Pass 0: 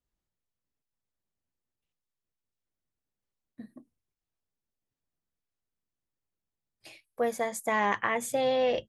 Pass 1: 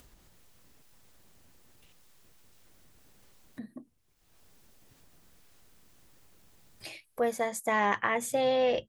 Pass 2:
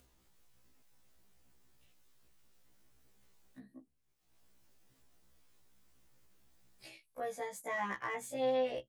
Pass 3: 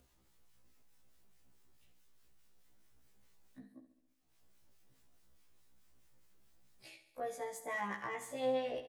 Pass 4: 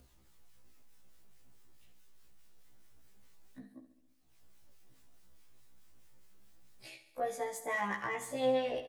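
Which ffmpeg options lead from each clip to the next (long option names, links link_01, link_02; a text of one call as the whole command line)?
ffmpeg -i in.wav -af "acompressor=mode=upward:threshold=-36dB:ratio=2.5" out.wav
ffmpeg -i in.wav -filter_complex "[0:a]acrossover=split=1800[link_01][link_02];[link_02]volume=32.5dB,asoftclip=hard,volume=-32.5dB[link_03];[link_01][link_03]amix=inputs=2:normalize=0,afftfilt=real='re*1.73*eq(mod(b,3),0)':imag='im*1.73*eq(mod(b,3),0)':win_size=2048:overlap=0.75,volume=-7.5dB" out.wav
ffmpeg -i in.wav -filter_complex "[0:a]acrossover=split=1100[link_01][link_02];[link_01]aeval=exprs='val(0)*(1-0.5/2+0.5/2*cos(2*PI*4.7*n/s))':channel_layout=same[link_03];[link_02]aeval=exprs='val(0)*(1-0.5/2-0.5/2*cos(2*PI*4.7*n/s))':channel_layout=same[link_04];[link_03][link_04]amix=inputs=2:normalize=0,aecho=1:1:69|138|207|276|345|414|483:0.237|0.142|0.0854|0.0512|0.0307|0.0184|0.0111" out.wav
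ffmpeg -i in.wav -af "flanger=delay=0.2:depth=9.9:regen=78:speed=0.24:shape=sinusoidal,volume=9dB" out.wav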